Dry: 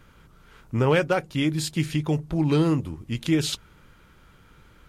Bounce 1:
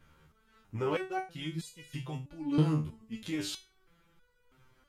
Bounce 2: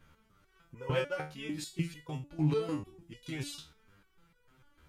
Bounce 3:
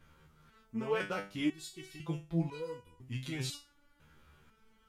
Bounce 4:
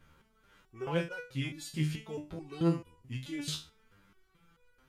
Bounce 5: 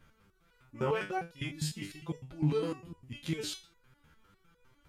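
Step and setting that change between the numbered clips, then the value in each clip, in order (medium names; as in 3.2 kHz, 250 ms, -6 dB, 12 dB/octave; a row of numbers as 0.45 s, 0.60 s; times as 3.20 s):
resonator arpeggio, rate: 3.1 Hz, 6.7 Hz, 2 Hz, 4.6 Hz, 9.9 Hz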